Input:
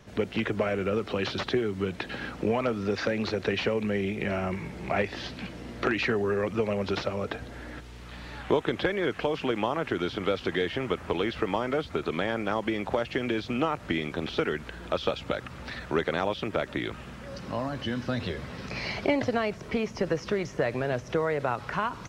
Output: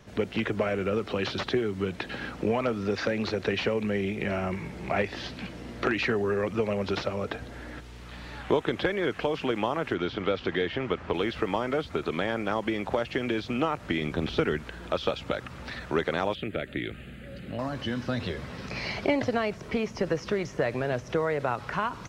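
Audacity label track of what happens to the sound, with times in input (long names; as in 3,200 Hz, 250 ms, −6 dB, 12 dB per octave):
9.940000	11.140000	low-pass filter 4,700 Hz
14.010000	14.590000	low-shelf EQ 220 Hz +7.5 dB
16.350000	17.590000	phaser with its sweep stopped centre 2,400 Hz, stages 4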